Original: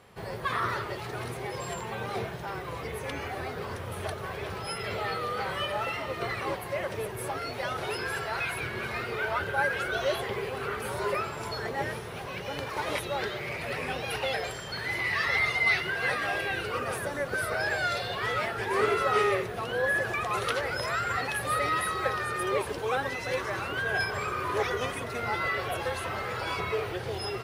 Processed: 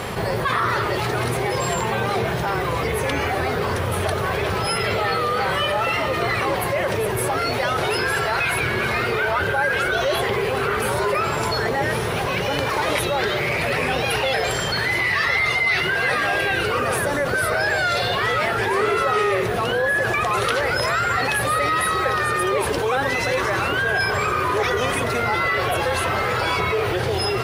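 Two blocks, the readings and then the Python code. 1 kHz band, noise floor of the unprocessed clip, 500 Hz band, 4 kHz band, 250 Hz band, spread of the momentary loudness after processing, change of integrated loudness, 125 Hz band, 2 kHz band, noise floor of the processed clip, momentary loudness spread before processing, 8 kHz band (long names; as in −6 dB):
+9.5 dB, −38 dBFS, +9.5 dB, +10.5 dB, +11.0 dB, 3 LU, +9.5 dB, +11.5 dB, +9.0 dB, −23 dBFS, 9 LU, +11.0 dB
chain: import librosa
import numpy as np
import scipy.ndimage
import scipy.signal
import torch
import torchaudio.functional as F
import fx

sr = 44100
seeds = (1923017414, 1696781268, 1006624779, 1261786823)

y = fx.env_flatten(x, sr, amount_pct=70)
y = y * 10.0 ** (3.5 / 20.0)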